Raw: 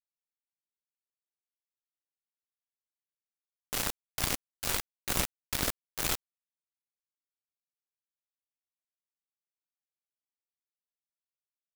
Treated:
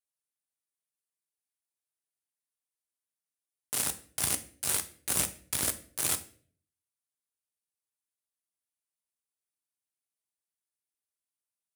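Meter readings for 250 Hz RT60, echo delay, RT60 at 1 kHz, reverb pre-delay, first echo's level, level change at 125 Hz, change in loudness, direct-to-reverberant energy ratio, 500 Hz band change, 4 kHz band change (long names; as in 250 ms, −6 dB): 0.60 s, no echo audible, 0.40 s, 3 ms, no echo audible, −3.0 dB, +2.5 dB, 8.5 dB, −2.5 dB, −1.5 dB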